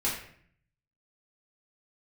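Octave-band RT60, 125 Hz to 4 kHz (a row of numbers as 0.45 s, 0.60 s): 1.0 s, 0.80 s, 0.60 s, 0.55 s, 0.60 s, 0.45 s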